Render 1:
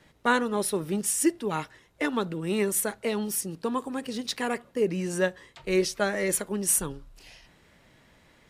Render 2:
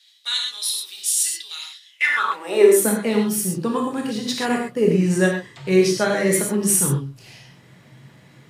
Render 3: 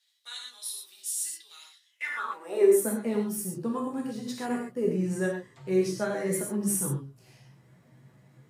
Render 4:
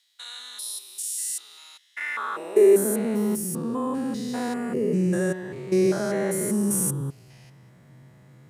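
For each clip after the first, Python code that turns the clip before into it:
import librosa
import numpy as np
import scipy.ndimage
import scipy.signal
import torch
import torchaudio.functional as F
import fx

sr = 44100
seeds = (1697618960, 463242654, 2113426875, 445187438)

y1 = fx.rev_gated(x, sr, seeds[0], gate_ms=150, shape='flat', drr_db=-0.5)
y1 = fx.filter_sweep_highpass(y1, sr, from_hz=3800.0, to_hz=130.0, start_s=1.84, end_s=3.12, q=4.6)
y1 = y1 * 10.0 ** (3.0 / 20.0)
y2 = fx.peak_eq(y1, sr, hz=3300.0, db=-9.0, octaves=1.8)
y2 = fx.chorus_voices(y2, sr, voices=6, hz=0.31, base_ms=12, depth_ms=4.4, mix_pct=35)
y2 = y2 * 10.0 ** (-6.5 / 20.0)
y3 = fx.spec_steps(y2, sr, hold_ms=200)
y3 = y3 * 10.0 ** (6.5 / 20.0)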